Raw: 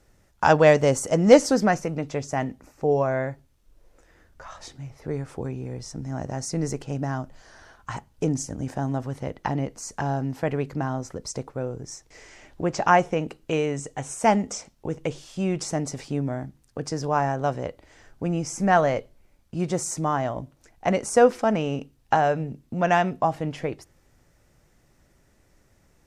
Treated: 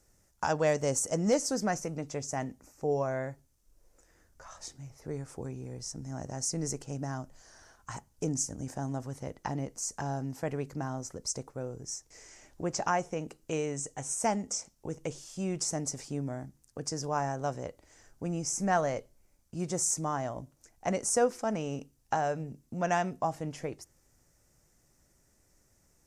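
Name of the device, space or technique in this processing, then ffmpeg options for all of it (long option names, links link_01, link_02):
over-bright horn tweeter: -af "highshelf=frequency=4700:width_type=q:width=1.5:gain=8,alimiter=limit=-8.5dB:level=0:latency=1:release=499,volume=-8dB"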